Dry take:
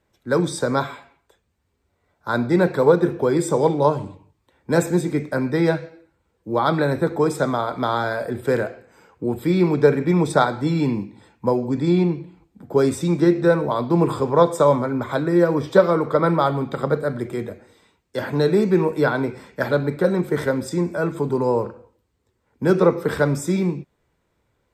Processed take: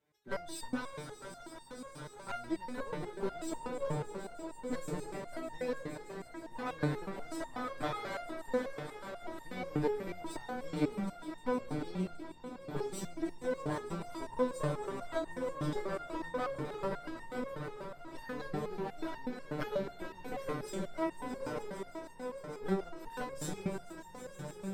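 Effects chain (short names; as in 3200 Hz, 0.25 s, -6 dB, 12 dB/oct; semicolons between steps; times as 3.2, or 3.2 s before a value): HPF 100 Hz 12 dB/oct; compressor 12:1, threshold -19 dBFS, peak gain reduction 12.5 dB; one-sided clip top -32 dBFS, bottom -10.5 dBFS; swelling echo 0.154 s, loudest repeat 5, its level -13 dB; flange 0.26 Hz, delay 2.1 ms, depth 8.7 ms, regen +88%; harmoniser -12 st -11 dB; stepped resonator 8.2 Hz 150–910 Hz; gain +7 dB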